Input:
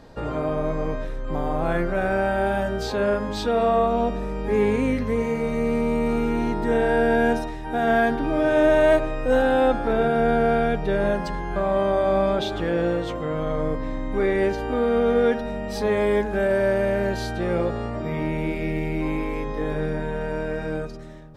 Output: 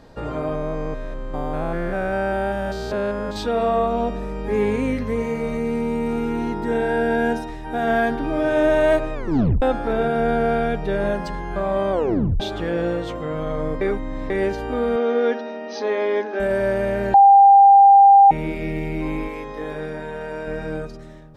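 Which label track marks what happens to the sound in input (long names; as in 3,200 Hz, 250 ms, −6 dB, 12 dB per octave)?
0.550000	3.360000	spectrum averaged block by block every 200 ms
5.570000	7.490000	notch comb filter 600 Hz
9.140000	9.140000	tape stop 0.48 s
11.920000	11.920000	tape stop 0.48 s
13.810000	14.300000	reverse
14.960000	16.400000	linear-phase brick-wall band-pass 220–6,500 Hz
17.140000	18.310000	beep over 795 Hz −6.5 dBFS
19.280000	20.470000	low-shelf EQ 240 Hz −10.5 dB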